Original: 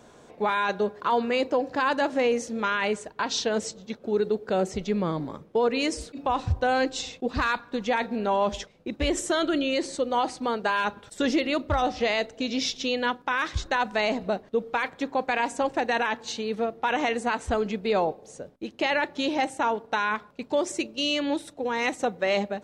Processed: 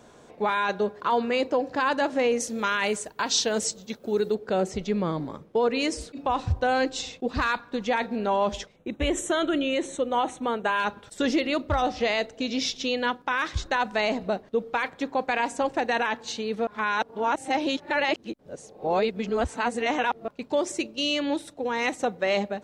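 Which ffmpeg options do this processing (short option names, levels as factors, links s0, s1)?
-filter_complex "[0:a]asettb=1/sr,asplit=3[s0][s1][s2];[s0]atrim=end=2.404[s3];[s1]atrim=start=2.4:end=4.35,asetpts=PTS-STARTPTS,afade=t=in:d=0.004:c=qsin,afade=t=out:st=1.946:d=0.004:c=qsin,aemphasis=mode=production:type=50fm[s4];[s2]atrim=start=4.346[s5];[s3][s4]acrossfade=d=0.004:c1=hsin:c2=qsin[s6];[s6][s5]acrossfade=d=0.004:c1=qsin:c2=hsin,asettb=1/sr,asplit=3[s7][s8][s9];[s7]atrim=end=8.764[s10];[s8]atrim=start=8.76:end=10.8,asetpts=PTS-STARTPTS,afade=t=in:d=0.004:c=qsin,afade=t=out:st=2.036:d=0.004:c=qsin,asuperstop=centerf=4800:order=4:qfactor=2.3[s11];[s9]atrim=start=10.796[s12];[s10][s11]acrossfade=d=0.004:c1=hsin:c2=qsin[s13];[s13][s12]acrossfade=d=0.004:c1=qsin:c2=hsin,asplit=3[s14][s15][s16];[s14]atrim=end=16.672[s17];[s15]atrim=start=16.668:end=20.282,asetpts=PTS-STARTPTS,areverse[s18];[s16]atrim=start=20.278[s19];[s17][s18]acrossfade=d=0.004:c1=hsin:c2=hsin[s20];[s20][s19]acrossfade=d=0.004:c1=hsin:c2=hsin"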